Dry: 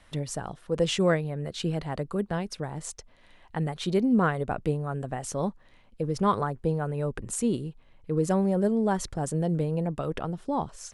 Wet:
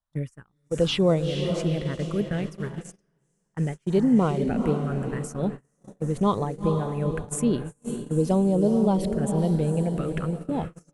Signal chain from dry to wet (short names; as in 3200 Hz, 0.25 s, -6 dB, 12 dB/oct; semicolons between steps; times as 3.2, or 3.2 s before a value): envelope phaser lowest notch 380 Hz, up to 1700 Hz, full sweep at -21 dBFS; diffused feedback echo 0.461 s, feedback 45%, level -6.5 dB; gate -33 dBFS, range -33 dB; gain +3.5 dB